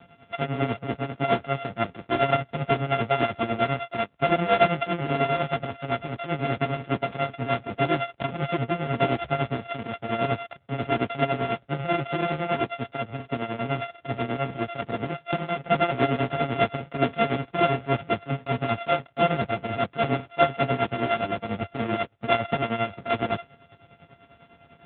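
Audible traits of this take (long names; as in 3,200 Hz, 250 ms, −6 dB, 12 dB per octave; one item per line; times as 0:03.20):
a buzz of ramps at a fixed pitch in blocks of 64 samples
tremolo triangle 10 Hz, depth 85%
AMR narrowband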